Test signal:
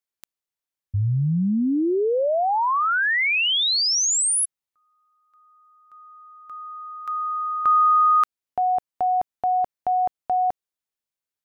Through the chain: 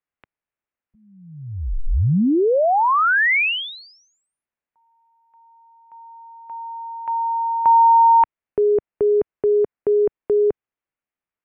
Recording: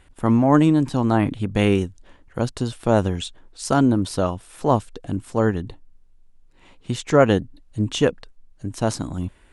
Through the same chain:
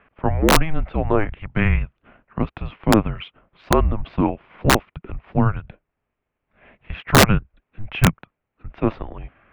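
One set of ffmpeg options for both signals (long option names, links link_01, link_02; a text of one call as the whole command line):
ffmpeg -i in.wav -af "highpass=frequency=310:width_type=q:width=0.5412,highpass=frequency=310:width_type=q:width=1.307,lowpass=frequency=2900:width_type=q:width=0.5176,lowpass=frequency=2900:width_type=q:width=0.7071,lowpass=frequency=2900:width_type=q:width=1.932,afreqshift=-320,aeval=exprs='(mod(2.66*val(0)+1,2)-1)/2.66':channel_layout=same,volume=4.5dB" out.wav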